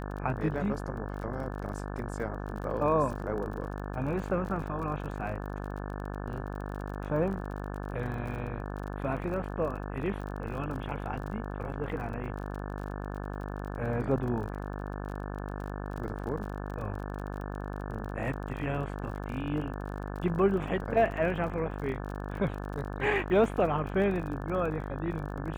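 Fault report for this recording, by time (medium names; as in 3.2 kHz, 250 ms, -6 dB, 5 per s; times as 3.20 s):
buzz 50 Hz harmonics 35 -37 dBFS
crackle 35 per s -38 dBFS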